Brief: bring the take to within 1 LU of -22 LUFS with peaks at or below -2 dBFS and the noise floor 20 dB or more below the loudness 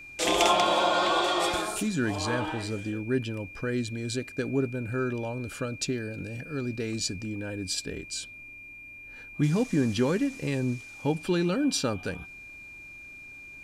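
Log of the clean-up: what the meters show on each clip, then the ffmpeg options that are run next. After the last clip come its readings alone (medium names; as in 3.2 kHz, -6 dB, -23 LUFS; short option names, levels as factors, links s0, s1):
steady tone 2.4 kHz; tone level -43 dBFS; loudness -28.5 LUFS; peak level -11.5 dBFS; loudness target -22.0 LUFS
-> -af "bandreject=f=2400:w=30"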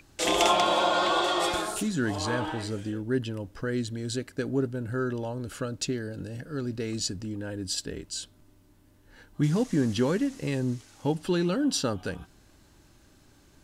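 steady tone not found; loudness -28.5 LUFS; peak level -10.5 dBFS; loudness target -22.0 LUFS
-> -af "volume=2.11"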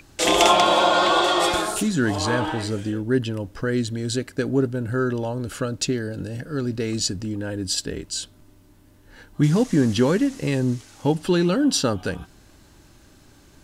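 loudness -22.0 LUFS; peak level -4.0 dBFS; noise floor -53 dBFS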